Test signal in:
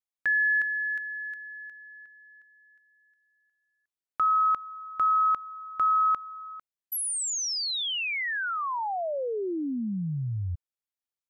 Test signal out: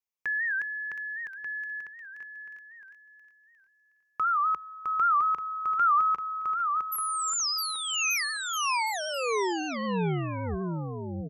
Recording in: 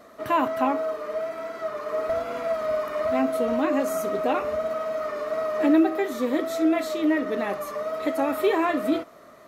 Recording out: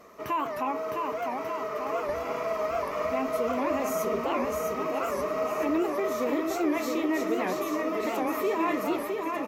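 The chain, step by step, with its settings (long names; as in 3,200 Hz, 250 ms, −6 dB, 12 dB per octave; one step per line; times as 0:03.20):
EQ curve with evenly spaced ripples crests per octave 0.78, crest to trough 8 dB
brickwall limiter −19 dBFS
on a send: bouncing-ball delay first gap 660 ms, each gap 0.8×, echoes 5
on the sum: wow of a warped record 78 rpm, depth 160 cents
level −2 dB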